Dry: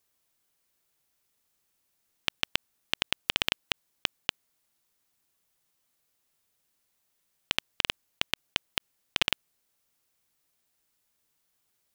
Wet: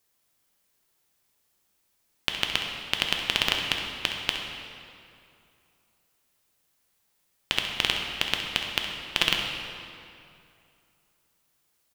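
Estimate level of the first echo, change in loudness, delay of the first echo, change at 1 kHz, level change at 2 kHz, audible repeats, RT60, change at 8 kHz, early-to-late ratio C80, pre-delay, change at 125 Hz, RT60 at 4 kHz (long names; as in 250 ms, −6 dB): −11.0 dB, +4.0 dB, 66 ms, +5.0 dB, +4.5 dB, 1, 2.6 s, +4.0 dB, 4.0 dB, 5 ms, +5.0 dB, 1.9 s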